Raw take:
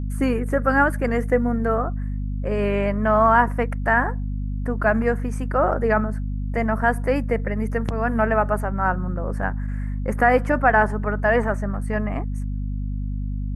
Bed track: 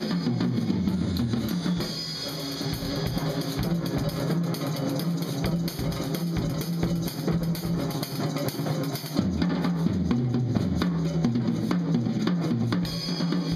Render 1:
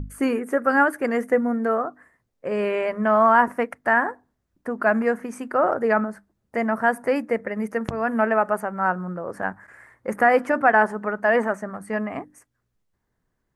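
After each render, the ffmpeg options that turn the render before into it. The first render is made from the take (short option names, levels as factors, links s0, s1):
-af "bandreject=f=50:t=h:w=6,bandreject=f=100:t=h:w=6,bandreject=f=150:t=h:w=6,bandreject=f=200:t=h:w=6,bandreject=f=250:t=h:w=6,bandreject=f=300:t=h:w=6"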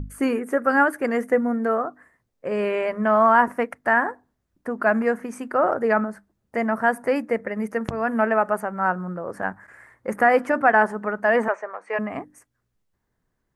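-filter_complex "[0:a]asettb=1/sr,asplit=3[s0][s1][s2];[s0]atrim=end=11.484[s3];[s1]atrim=start=11.48:end=11.99,asetpts=PTS-STARTPTS,afade=t=in:d=0.004:c=qsin,afade=t=out:st=0.506:d=0.004:c=qsin,highpass=f=450:w=0.5412,highpass=f=450:w=1.3066,equalizer=f=460:t=q:w=4:g=6,equalizer=f=980:t=q:w=4:g=6,equalizer=f=2400:t=q:w=4:g=9,equalizer=f=4800:t=q:w=4:g=-6,lowpass=f=5800:w=0.5412,lowpass=f=5800:w=1.3066[s4];[s2]atrim=start=11.986[s5];[s3][s4]acrossfade=d=0.004:c1=hsin:c2=qsin[s6];[s6][s5]acrossfade=d=0.004:c1=qsin:c2=hsin"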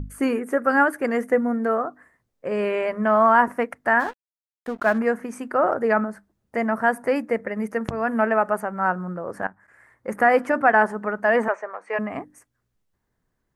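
-filter_complex "[0:a]asplit=3[s0][s1][s2];[s0]afade=t=out:st=3.99:d=0.02[s3];[s1]aeval=exprs='sgn(val(0))*max(abs(val(0))-0.01,0)':c=same,afade=t=in:st=3.99:d=0.02,afade=t=out:st=4.97:d=0.02[s4];[s2]afade=t=in:st=4.97:d=0.02[s5];[s3][s4][s5]amix=inputs=3:normalize=0,asplit=2[s6][s7];[s6]atrim=end=9.47,asetpts=PTS-STARTPTS,afade=t=out:st=9.466:d=0.004:c=hsin:silence=0.16788[s8];[s7]atrim=start=9.47,asetpts=PTS-STARTPTS,afade=t=in:d=0.8:silence=0.16788[s9];[s8][s9]concat=n=2:v=0:a=1"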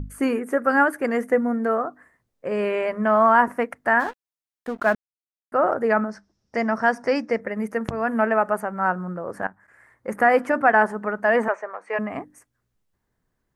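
-filter_complex "[0:a]asettb=1/sr,asplit=3[s0][s1][s2];[s0]atrim=end=6.094[s3];[s1]atrim=start=6.09:end=7.4,asetpts=PTS-STARTPTS,afade=t=in:d=0.004:c=qsin,afade=t=out:st=1.306:d=0.004:c=qsin,lowpass=f=5500:t=q:w=8.2[s4];[s2]atrim=start=7.396[s5];[s3][s4]acrossfade=d=0.004:c1=hsin:c2=qsin[s6];[s6][s5]acrossfade=d=0.004:c1=qsin:c2=hsin,asplit=3[s7][s8][s9];[s7]atrim=end=4.95,asetpts=PTS-STARTPTS,afade=t=out:st=4.946:d=0.004:c=hsin[s10];[s8]atrim=start=4.95:end=5.52,asetpts=PTS-STARTPTS,volume=0[s11];[s9]atrim=start=5.52,asetpts=PTS-STARTPTS,afade=t=in:d=0.004:c=hsin[s12];[s10][s11][s12]concat=n=3:v=0:a=1"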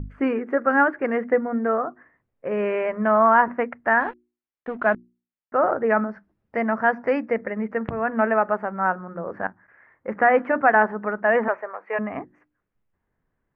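-af "lowpass=f=2600:w=0.5412,lowpass=f=2600:w=1.3066,bandreject=f=60:t=h:w=6,bandreject=f=120:t=h:w=6,bandreject=f=180:t=h:w=6,bandreject=f=240:t=h:w=6,bandreject=f=300:t=h:w=6,bandreject=f=360:t=h:w=6"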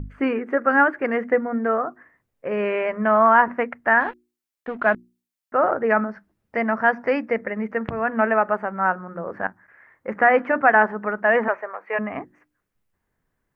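-af "highshelf=f=2600:g=9"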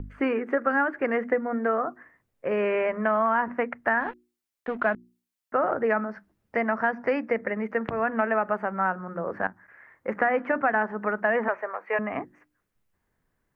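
-filter_complex "[0:a]acrossover=split=280|2700[s0][s1][s2];[s0]acompressor=threshold=0.0178:ratio=4[s3];[s1]acompressor=threshold=0.0794:ratio=4[s4];[s2]acompressor=threshold=0.00501:ratio=4[s5];[s3][s4][s5]amix=inputs=3:normalize=0"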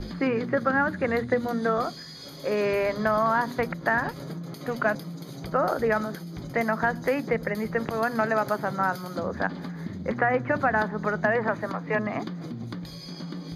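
-filter_complex "[1:a]volume=0.316[s0];[0:a][s0]amix=inputs=2:normalize=0"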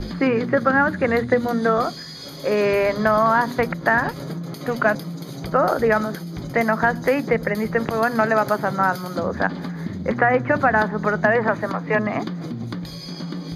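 -af "volume=2"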